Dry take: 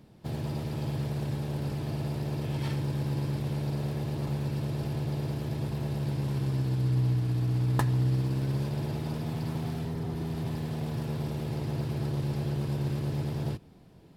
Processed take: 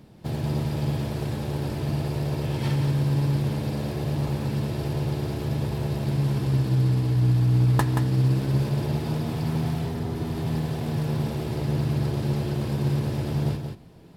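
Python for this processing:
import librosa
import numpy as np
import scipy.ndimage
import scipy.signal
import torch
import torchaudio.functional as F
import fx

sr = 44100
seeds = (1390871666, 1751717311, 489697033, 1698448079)

y = x + 10.0 ** (-6.5 / 20.0) * np.pad(x, (int(178 * sr / 1000.0), 0))[:len(x)]
y = y * librosa.db_to_amplitude(5.0)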